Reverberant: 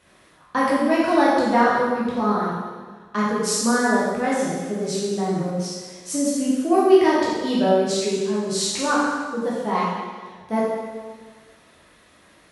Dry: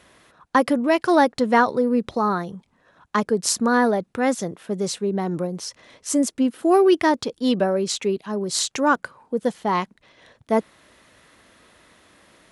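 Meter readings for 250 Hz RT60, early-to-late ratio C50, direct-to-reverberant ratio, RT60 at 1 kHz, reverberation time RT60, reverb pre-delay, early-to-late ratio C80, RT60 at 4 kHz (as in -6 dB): 1.5 s, -1.5 dB, -7.5 dB, 1.5 s, 1.5 s, 6 ms, 1.0 dB, 1.4 s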